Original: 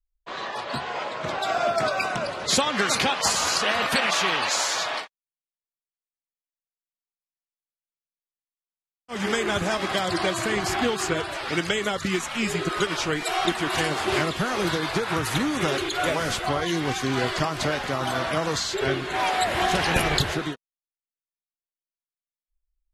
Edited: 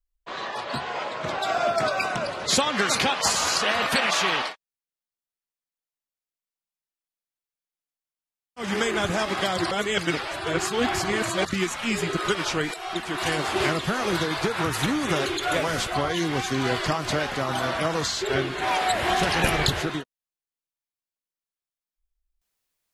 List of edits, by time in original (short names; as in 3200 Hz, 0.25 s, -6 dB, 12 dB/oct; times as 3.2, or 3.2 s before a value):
4.42–4.94 cut
10.23–11.97 reverse
13.26–13.92 fade in, from -12.5 dB